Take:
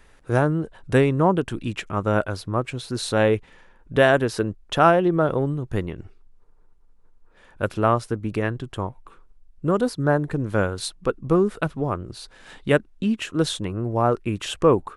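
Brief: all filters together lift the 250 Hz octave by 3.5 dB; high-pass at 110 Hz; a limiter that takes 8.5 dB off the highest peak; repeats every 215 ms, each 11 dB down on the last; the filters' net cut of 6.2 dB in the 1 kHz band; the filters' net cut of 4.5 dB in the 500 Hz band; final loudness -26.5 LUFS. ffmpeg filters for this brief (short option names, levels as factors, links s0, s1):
-af "highpass=110,equalizer=f=250:t=o:g=7.5,equalizer=f=500:t=o:g=-6.5,equalizer=f=1000:t=o:g=-7,alimiter=limit=0.211:level=0:latency=1,aecho=1:1:215|430|645:0.282|0.0789|0.0221,volume=0.891"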